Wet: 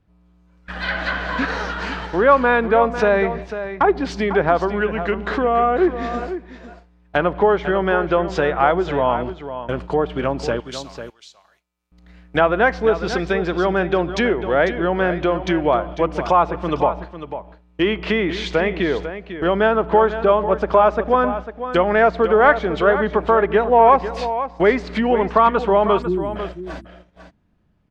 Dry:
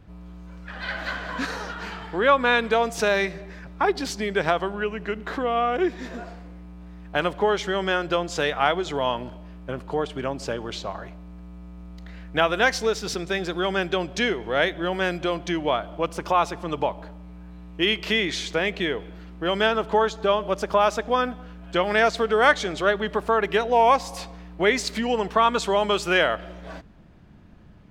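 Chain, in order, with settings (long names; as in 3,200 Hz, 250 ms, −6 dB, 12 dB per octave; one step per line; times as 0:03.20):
noise gate −37 dBFS, range −21 dB
0:26.02–0:26.36: time-frequency box erased 370–7,200 Hz
in parallel at −8.5 dB: soft clipping −19 dBFS, distortion −10 dB
0:10.60–0:11.92: on the sum: first-order pre-emphasis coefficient 0.97
treble cut that deepens with the level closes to 1,500 Hz, closed at −19 dBFS
on a send: single-tap delay 498 ms −11 dB
on the sum: level +4.5 dB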